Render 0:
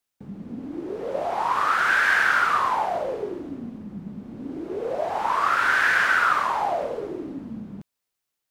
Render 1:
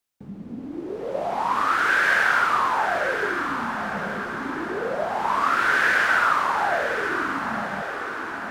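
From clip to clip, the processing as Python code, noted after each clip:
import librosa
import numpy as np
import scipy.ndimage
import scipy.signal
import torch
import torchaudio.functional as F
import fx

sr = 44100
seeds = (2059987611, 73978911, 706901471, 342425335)

y = fx.echo_diffused(x, sr, ms=1006, feedback_pct=57, wet_db=-7.0)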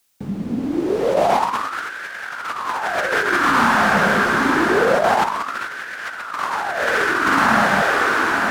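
y = fx.high_shelf(x, sr, hz=2700.0, db=7.0)
y = fx.over_compress(y, sr, threshold_db=-26.0, ratio=-0.5)
y = y * librosa.db_to_amplitude(7.5)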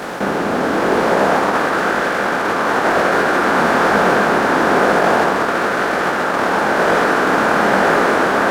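y = fx.bin_compress(x, sr, power=0.2)
y = fx.detune_double(y, sr, cents=35)
y = y * librosa.db_to_amplitude(-2.0)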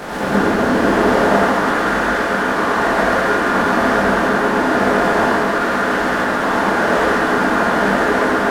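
y = fx.low_shelf(x, sr, hz=89.0, db=10.0)
y = fx.rider(y, sr, range_db=10, speed_s=2.0)
y = fx.rev_gated(y, sr, seeds[0], gate_ms=160, shape='rising', drr_db=-5.0)
y = y * librosa.db_to_amplitude(-7.5)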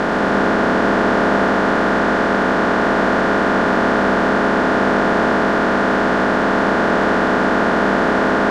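y = fx.bin_compress(x, sr, power=0.2)
y = scipy.signal.sosfilt(scipy.signal.butter(2, 6100.0, 'lowpass', fs=sr, output='sos'), y)
y = y * librosa.db_to_amplitude(-7.0)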